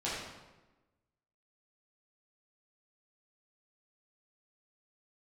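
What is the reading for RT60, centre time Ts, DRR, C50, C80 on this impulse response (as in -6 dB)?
1.1 s, 77 ms, -9.5 dB, -0.5 dB, 2.5 dB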